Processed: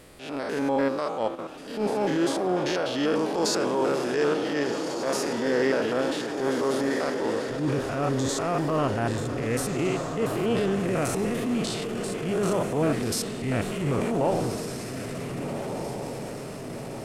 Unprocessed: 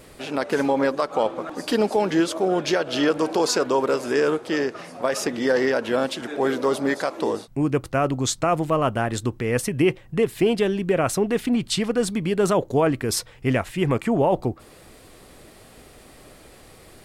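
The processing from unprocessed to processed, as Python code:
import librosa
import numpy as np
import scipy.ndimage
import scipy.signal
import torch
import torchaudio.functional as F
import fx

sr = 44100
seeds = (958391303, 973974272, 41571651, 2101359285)

y = fx.spec_steps(x, sr, hold_ms=100)
y = fx.level_steps(y, sr, step_db=11, at=(1.35, 1.81))
y = fx.tone_stack(y, sr, knobs='10-0-10', at=(11.71, 12.23))
y = fx.echo_diffused(y, sr, ms=1564, feedback_pct=60, wet_db=-7)
y = fx.transient(y, sr, attack_db=-8, sustain_db=3)
y = y * librosa.db_to_amplitude(-1.5)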